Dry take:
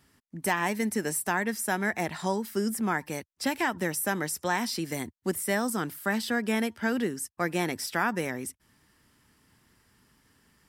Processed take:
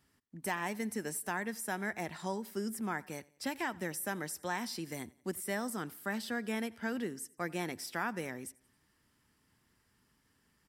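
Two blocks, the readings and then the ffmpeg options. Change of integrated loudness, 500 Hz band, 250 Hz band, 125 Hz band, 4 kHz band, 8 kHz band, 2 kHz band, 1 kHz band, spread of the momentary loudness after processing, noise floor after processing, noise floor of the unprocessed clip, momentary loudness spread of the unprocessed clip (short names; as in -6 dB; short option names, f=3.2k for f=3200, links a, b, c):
-8.5 dB, -8.5 dB, -8.5 dB, -8.5 dB, -8.5 dB, -8.5 dB, -8.5 dB, -8.5 dB, 5 LU, -74 dBFS, -72 dBFS, 5 LU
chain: -af "aecho=1:1:89|178|267:0.0668|0.0314|0.0148,volume=-8.5dB"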